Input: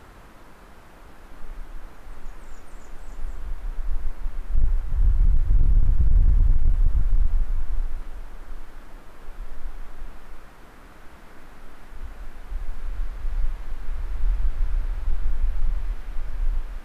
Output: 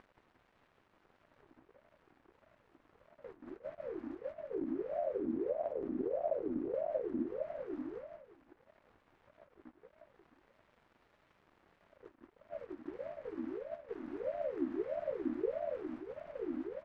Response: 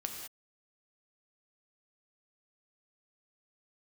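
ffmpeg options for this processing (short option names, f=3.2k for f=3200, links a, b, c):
-filter_complex "[0:a]highpass=47,agate=range=-13dB:threshold=-37dB:ratio=16:detection=peak,equalizer=f=96:t=o:w=2.6:g=-10,acompressor=mode=upward:threshold=-46dB:ratio=2.5,alimiter=level_in=2.5dB:limit=-24dB:level=0:latency=1:release=102,volume=-2.5dB,adynamicsmooth=sensitivity=7.5:basefreq=1.2k,asplit=2[a][b];[b]asetrate=55563,aresample=44100,atempo=0.793701,volume=-10dB[c];[a][c]amix=inputs=2:normalize=0,aeval=exprs='sgn(val(0))*max(abs(val(0))-0.00133,0)':c=same,aecho=1:1:179|358|537|716:0.631|0.221|0.0773|0.0271,aeval=exprs='val(0)*sin(2*PI*460*n/s+460*0.4/1.6*sin(2*PI*1.6*n/s))':c=same,volume=-2dB"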